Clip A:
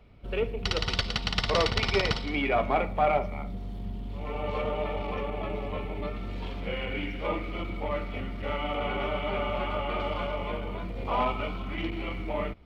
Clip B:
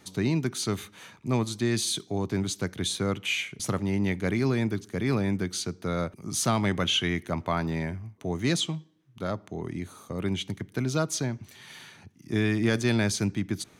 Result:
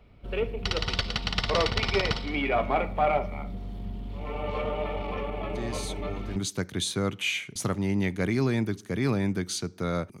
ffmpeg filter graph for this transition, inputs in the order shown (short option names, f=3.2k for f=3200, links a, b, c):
-filter_complex "[1:a]asplit=2[a][b];[0:a]apad=whole_dur=10.2,atrim=end=10.2,atrim=end=6.362[c];[b]atrim=start=2.398:end=6.24[d];[a]atrim=start=1.57:end=2.4,asetpts=PTS-STARTPTS,volume=-10dB,afade=t=in:d=0.004:c=hsin,afade=t=out:st=0.826:d=0.004:c=hsin,adelay=243873S[e];[c][d]acrossfade=d=0.004:c1=hsin:c2=hsin[f];[f][e]amix=inputs=2:normalize=0"